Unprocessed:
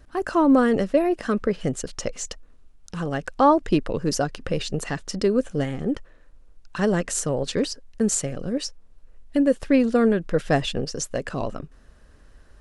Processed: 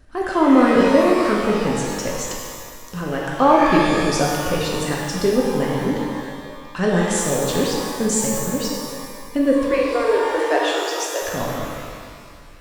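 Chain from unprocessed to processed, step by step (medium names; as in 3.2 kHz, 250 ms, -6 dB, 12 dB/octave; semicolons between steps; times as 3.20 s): 9.67–11.22 s: Chebyshev high-pass 300 Hz, order 10; pitch-shifted reverb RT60 1.9 s, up +12 st, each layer -8 dB, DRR -3 dB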